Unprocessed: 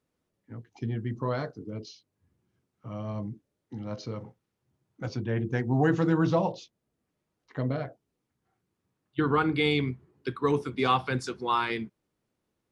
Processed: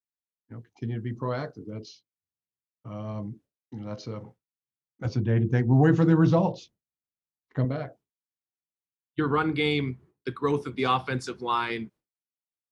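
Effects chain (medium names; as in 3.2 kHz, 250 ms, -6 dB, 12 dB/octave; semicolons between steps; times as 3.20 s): 5.05–7.65 s: bass shelf 250 Hz +9 dB; expander -48 dBFS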